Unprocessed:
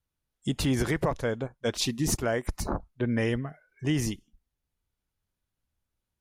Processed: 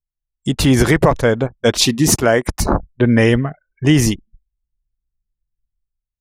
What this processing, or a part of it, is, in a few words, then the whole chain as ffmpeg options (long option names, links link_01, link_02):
voice memo with heavy noise removal: -filter_complex "[0:a]asettb=1/sr,asplit=3[link_01][link_02][link_03];[link_01]atrim=end=1.844[link_04];[link_02]atrim=start=1.84:end=2.6,asetpts=PTS-STARTPTS,afade=type=in:duration=0.004:curve=qsin,afade=type=out:start_time=0.756:duration=0.004:curve=qsin,highpass=frequency=110:poles=1[link_05];[link_03]atrim=start=2.596[link_06];[link_04][link_05]acrossfade=duration=0.004:curve1=hsin:curve2=qsin[link_07];[link_07][link_06]acrossfade=duration=0.004:curve1=qsin:curve2=hsin,anlmdn=0.01,dynaudnorm=framelen=100:gausssize=11:maxgain=9dB,volume=5.5dB"